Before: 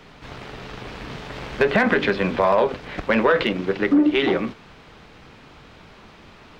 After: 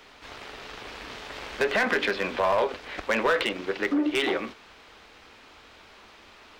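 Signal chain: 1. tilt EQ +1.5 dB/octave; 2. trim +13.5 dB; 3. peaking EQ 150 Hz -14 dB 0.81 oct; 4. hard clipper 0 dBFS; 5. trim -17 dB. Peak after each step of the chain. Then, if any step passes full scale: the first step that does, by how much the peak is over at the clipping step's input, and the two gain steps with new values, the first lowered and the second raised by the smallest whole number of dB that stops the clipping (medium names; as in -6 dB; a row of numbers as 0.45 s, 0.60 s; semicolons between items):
-6.0 dBFS, +7.5 dBFS, +7.5 dBFS, 0.0 dBFS, -17.0 dBFS; step 2, 7.5 dB; step 2 +5.5 dB, step 5 -9 dB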